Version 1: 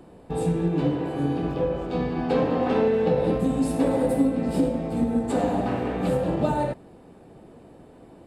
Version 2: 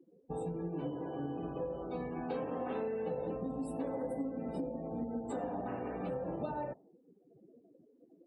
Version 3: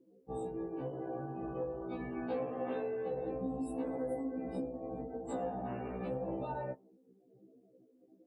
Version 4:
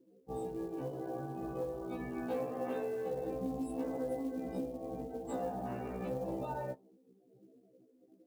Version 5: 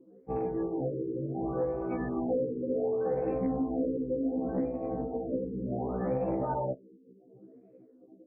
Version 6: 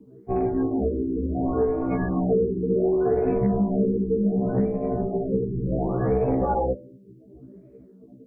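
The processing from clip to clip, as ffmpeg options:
-af "lowshelf=f=210:g=-8,afftdn=nr=34:nf=-39,acompressor=threshold=-34dB:ratio=2.5,volume=-4.5dB"
-af "afftfilt=real='re*1.73*eq(mod(b,3),0)':imag='im*1.73*eq(mod(b,3),0)':win_size=2048:overlap=0.75,volume=1.5dB"
-af "acrusher=bits=7:mode=log:mix=0:aa=0.000001"
-filter_complex "[0:a]aexciter=amount=14.3:drive=4.6:freq=4.7k,asplit=2[a][b];[b]aeval=exprs='0.119*sin(PI/2*2*val(0)/0.119)':c=same,volume=-6dB[c];[a][c]amix=inputs=2:normalize=0,afftfilt=real='re*lt(b*sr/1024,500*pow(2700/500,0.5+0.5*sin(2*PI*0.68*pts/sr)))':imag='im*lt(b*sr/1024,500*pow(2700/500,0.5+0.5*sin(2*PI*0.68*pts/sr)))':win_size=1024:overlap=0.75"
-af "afreqshift=-65,bandreject=f=83.65:t=h:w=4,bandreject=f=167.3:t=h:w=4,bandreject=f=250.95:t=h:w=4,bandreject=f=334.6:t=h:w=4,bandreject=f=418.25:t=h:w=4,bandreject=f=501.9:t=h:w=4,bandreject=f=585.55:t=h:w=4,bandreject=f=669.2:t=h:w=4,acontrast=62,volume=2dB"

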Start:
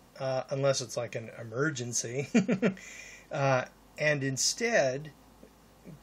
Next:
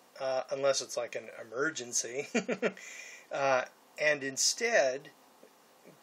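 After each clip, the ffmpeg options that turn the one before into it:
-af "highpass=380"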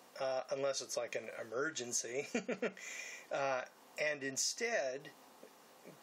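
-af "acompressor=threshold=-35dB:ratio=4"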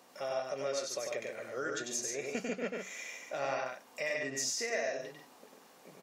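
-af "aecho=1:1:96.21|142.9:0.708|0.501"

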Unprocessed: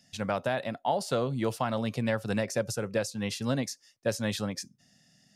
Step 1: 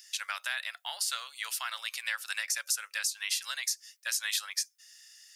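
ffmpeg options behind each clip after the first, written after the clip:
-filter_complex "[0:a]highpass=f=1.5k:w=0.5412,highpass=f=1.5k:w=1.3066,highshelf=f=8.8k:g=11.5,asplit=2[a][b];[b]acompressor=threshold=-44dB:ratio=6,volume=1.5dB[c];[a][c]amix=inputs=2:normalize=0,volume=1.5dB"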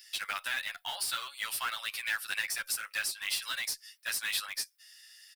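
-filter_complex "[0:a]equalizer=f=6.6k:t=o:w=0.39:g=-12.5,asplit=2[a][b];[b]aeval=exprs='(mod(42.2*val(0)+1,2)-1)/42.2':c=same,volume=-9dB[c];[a][c]amix=inputs=2:normalize=0,asplit=2[d][e];[e]adelay=9.9,afreqshift=0.51[f];[d][f]amix=inputs=2:normalize=1,volume=3.5dB"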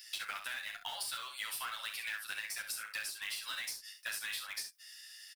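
-filter_complex "[0:a]acompressor=threshold=-39dB:ratio=10,asplit=2[a][b];[b]aecho=0:1:37|66:0.316|0.376[c];[a][c]amix=inputs=2:normalize=0,volume=1.5dB"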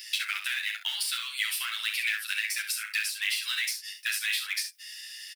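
-af "highpass=f=2.2k:t=q:w=1.8,volume=8dB"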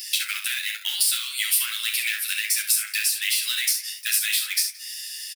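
-filter_complex "[0:a]crystalizer=i=5:c=0,flanger=delay=8.7:depth=8.7:regen=56:speed=1.2:shape=triangular,asplit=2[a][b];[b]adelay=173,lowpass=f=3k:p=1,volume=-16.5dB,asplit=2[c][d];[d]adelay=173,lowpass=f=3k:p=1,volume=0.39,asplit=2[e][f];[f]adelay=173,lowpass=f=3k:p=1,volume=0.39[g];[a][c][e][g]amix=inputs=4:normalize=0"

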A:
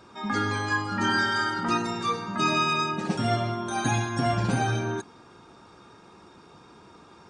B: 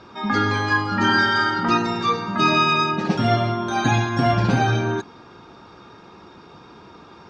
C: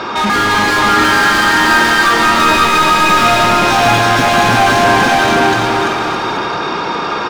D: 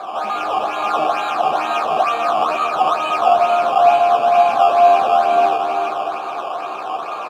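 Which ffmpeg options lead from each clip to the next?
-af "lowpass=f=5.5k:w=0.5412,lowpass=f=5.5k:w=1.3066,volume=6.5dB"
-filter_complex "[0:a]asplit=2[a][b];[b]aecho=0:1:525:0.708[c];[a][c]amix=inputs=2:normalize=0,asplit=2[d][e];[e]highpass=f=720:p=1,volume=37dB,asoftclip=type=tanh:threshold=-4dB[f];[d][f]amix=inputs=2:normalize=0,lowpass=f=3.3k:p=1,volume=-6dB,asplit=2[g][h];[h]aecho=0:1:340|612|829.6|1004|1143:0.631|0.398|0.251|0.158|0.1[i];[g][i]amix=inputs=2:normalize=0,volume=-2dB"
-filter_complex "[0:a]acrusher=samples=15:mix=1:aa=0.000001:lfo=1:lforange=15:lforate=2.2,asplit=3[a][b][c];[a]bandpass=f=730:t=q:w=8,volume=0dB[d];[b]bandpass=f=1.09k:t=q:w=8,volume=-6dB[e];[c]bandpass=f=2.44k:t=q:w=8,volume=-9dB[f];[d][e][f]amix=inputs=3:normalize=0,asplit=2[g][h];[h]adelay=13,volume=-6.5dB[i];[g][i]amix=inputs=2:normalize=0,volume=2dB"

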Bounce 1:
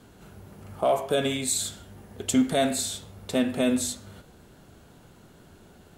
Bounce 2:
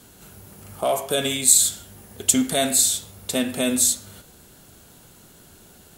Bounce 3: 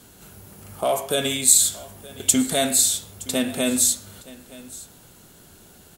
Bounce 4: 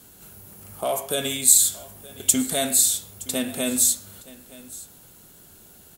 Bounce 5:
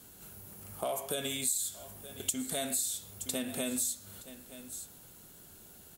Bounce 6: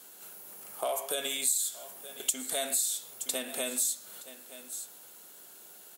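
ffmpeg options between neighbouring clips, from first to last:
-af "crystalizer=i=3.5:c=0"
-af "aecho=1:1:919:0.1"
-af "highshelf=f=11k:g=11,volume=-3.5dB"
-af "acompressor=threshold=-27dB:ratio=4,volume=-4.5dB"
-af "highpass=450,volume=3.5dB"

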